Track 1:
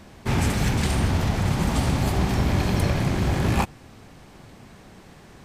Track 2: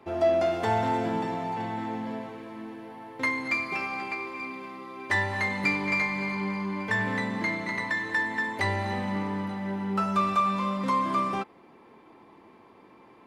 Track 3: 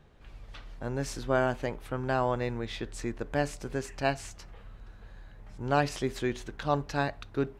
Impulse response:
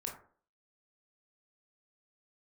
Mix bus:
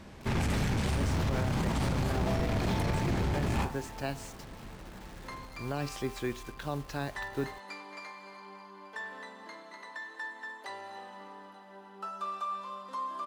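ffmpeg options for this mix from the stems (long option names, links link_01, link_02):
-filter_complex "[0:a]highshelf=frequency=7700:gain=-6.5,bandreject=frequency=720:width=22,aeval=exprs='clip(val(0),-1,0.075)':channel_layout=same,volume=-5.5dB,asplit=2[link_01][link_02];[link_02]volume=-5dB[link_03];[1:a]highpass=550,equalizer=frequency=2200:width_type=o:width=0.3:gain=-14,adelay=2050,volume=-13dB,asplit=2[link_04][link_05];[link_05]volume=-5dB[link_06];[2:a]acrossover=split=400|3000[link_07][link_08][link_09];[link_08]acompressor=threshold=-30dB:ratio=6[link_10];[link_07][link_10][link_09]amix=inputs=3:normalize=0,acrusher=bits=7:mix=0:aa=0.000001,volume=-3.5dB[link_11];[3:a]atrim=start_sample=2205[link_12];[link_03][link_06]amix=inputs=2:normalize=0[link_13];[link_13][link_12]afir=irnorm=-1:irlink=0[link_14];[link_01][link_04][link_11][link_14]amix=inputs=4:normalize=0,alimiter=limit=-21.5dB:level=0:latency=1:release=28"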